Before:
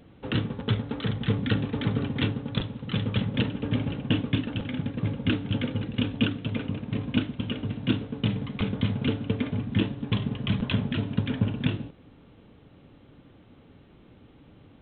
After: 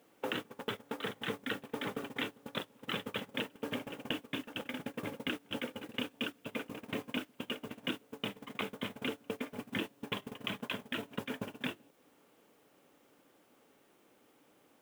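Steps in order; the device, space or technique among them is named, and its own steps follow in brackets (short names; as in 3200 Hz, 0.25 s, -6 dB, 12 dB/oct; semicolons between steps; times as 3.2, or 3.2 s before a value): baby monitor (BPF 430–3100 Hz; compressor 8:1, threshold -48 dBFS, peak gain reduction 21 dB; white noise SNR 16 dB; gate -50 dBFS, range -20 dB); gain +14 dB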